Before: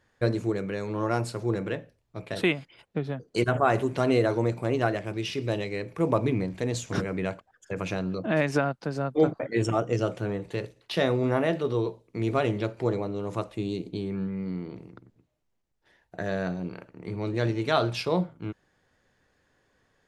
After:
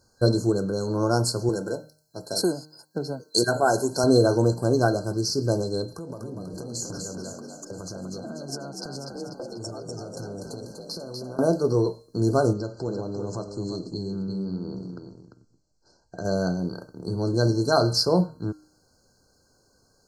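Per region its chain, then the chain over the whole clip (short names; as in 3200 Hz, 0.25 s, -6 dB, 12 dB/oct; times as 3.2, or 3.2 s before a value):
1.49–4.04 tilt +2 dB/oct + notch comb 1200 Hz
5.85–11.39 compressor 20:1, threshold -37 dBFS + frequency-shifting echo 0.245 s, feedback 52%, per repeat +51 Hz, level -4.5 dB
12.53–16.25 steep low-pass 7900 Hz 48 dB/oct + compressor 2:1, threshold -36 dBFS + echo 0.346 s -7.5 dB
whole clip: de-hum 153.5 Hz, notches 30; FFT band-reject 1600–4100 Hz; resonant high shelf 1700 Hz +8 dB, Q 3; gain +5.5 dB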